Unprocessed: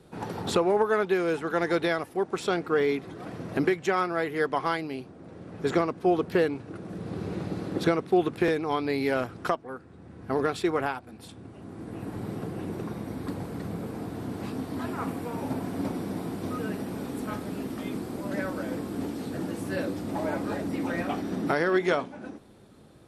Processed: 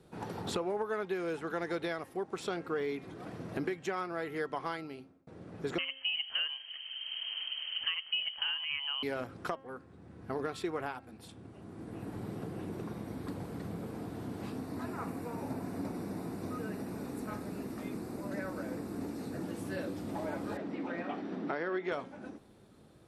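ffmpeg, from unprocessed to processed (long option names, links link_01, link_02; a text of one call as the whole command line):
ffmpeg -i in.wav -filter_complex "[0:a]asettb=1/sr,asplit=3[link_01][link_02][link_03];[link_01]atrim=end=5.784[link_04];[link_02]atrim=start=5.78:end=9.03,asetpts=PTS-STARTPTS,afade=type=in:duration=0.004:curve=qsin,afade=type=out:start_time=3.246:duration=0.004:curve=qsin,lowpass=frequency=2800:width_type=q:width=0.5098,lowpass=frequency=2800:width_type=q:width=0.6013,lowpass=frequency=2800:width_type=q:width=0.9,lowpass=frequency=2800:width_type=q:width=2.563,afreqshift=-3300[link_05];[link_03]atrim=start=9.026[link_06];[link_04][link_05]acrossfade=duration=0.004:curve1=hsin:curve2=qsin[link_07];[link_07][link_06]acrossfade=duration=0.004:curve1=qsin:curve2=hsin,asettb=1/sr,asplit=3[link_08][link_09][link_10];[link_08]atrim=end=14.594[link_11];[link_09]atrim=start=14.59:end=19.44,asetpts=PTS-STARTPTS,afade=type=in:duration=0.004:curve=qsin,afade=type=out:start_time=4.846:duration=0.004:curve=qsin,equalizer=frequency=3200:width=6.9:gain=-12.5[link_12];[link_10]atrim=start=19.436[link_13];[link_11][link_12]acrossfade=duration=0.004:curve1=hsin:curve2=qsin[link_14];[link_14][link_13]acrossfade=duration=0.004:curve1=qsin:curve2=hsin,asettb=1/sr,asplit=3[link_15][link_16][link_17];[link_15]atrim=end=20.574[link_18];[link_16]atrim=start=20.57:end=21.92,asetpts=PTS-STARTPTS,afade=type=in:duration=0.004:curve=qsin,afade=type=out:start_time=1.346:duration=0.004:curve=qsin,highpass=200,lowpass=3400[link_19];[link_17]atrim=start=21.916[link_20];[link_18][link_19]acrossfade=duration=0.004:curve1=hsin:curve2=qsin[link_21];[link_21][link_20]acrossfade=duration=0.004:curve1=qsin:curve2=hsin,asplit=2[link_22][link_23];[link_22]atrim=end=5.27,asetpts=PTS-STARTPTS,afade=type=out:start_time=4.73:duration=0.54[link_24];[link_23]atrim=start=5.27,asetpts=PTS-STARTPTS,afade=type=in:duration=0.004:curve=hsin[link_25];[link_24][link_25]concat=n=2:v=0:a=1,bandreject=frequency=267.5:width_type=h:width=4,bandreject=frequency=535:width_type=h:width=4,bandreject=frequency=802.5:width_type=h:width=4,bandreject=frequency=1070:width_type=h:width=4,bandreject=frequency=1337.5:width_type=h:width=4,bandreject=frequency=1605:width_type=h:width=4,bandreject=frequency=1872.5:width_type=h:width=4,bandreject=frequency=2140:width_type=h:width=4,bandreject=frequency=2407.5:width_type=h:width=4,bandreject=frequency=2675:width_type=h:width=4,bandreject=frequency=2942.5:width_type=h:width=4,bandreject=frequency=3210:width_type=h:width=4,acompressor=threshold=-29dB:ratio=2,volume=-5.5dB" out.wav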